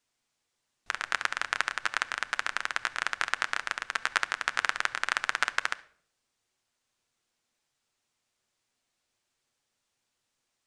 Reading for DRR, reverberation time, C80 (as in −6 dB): 10.5 dB, 0.60 s, 22.5 dB